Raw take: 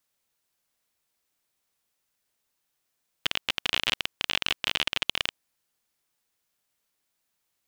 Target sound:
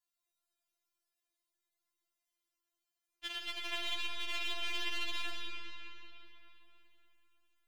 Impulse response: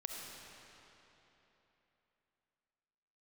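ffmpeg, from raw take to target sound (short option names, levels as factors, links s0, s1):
-filter_complex "[1:a]atrim=start_sample=2205[s0];[0:a][s0]afir=irnorm=-1:irlink=0,afftfilt=real='re*4*eq(mod(b,16),0)':imag='im*4*eq(mod(b,16),0)':win_size=2048:overlap=0.75,volume=0.473"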